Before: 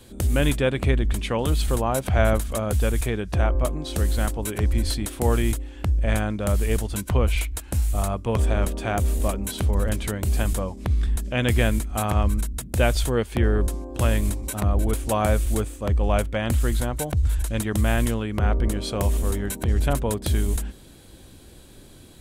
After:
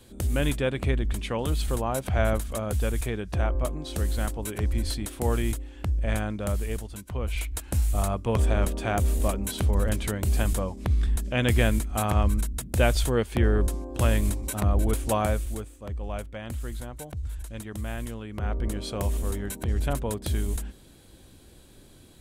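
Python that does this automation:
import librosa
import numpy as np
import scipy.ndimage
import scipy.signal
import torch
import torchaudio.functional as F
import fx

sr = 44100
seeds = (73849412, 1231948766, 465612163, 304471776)

y = fx.gain(x, sr, db=fx.line((6.44, -4.5), (7.08, -13.0), (7.57, -1.5), (15.13, -1.5), (15.67, -12.0), (18.08, -12.0), (18.75, -5.0)))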